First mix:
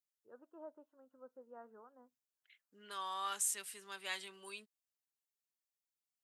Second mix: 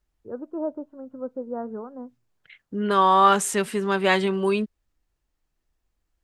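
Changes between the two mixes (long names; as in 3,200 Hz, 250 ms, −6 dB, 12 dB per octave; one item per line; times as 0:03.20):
second voice +8.0 dB
master: remove first difference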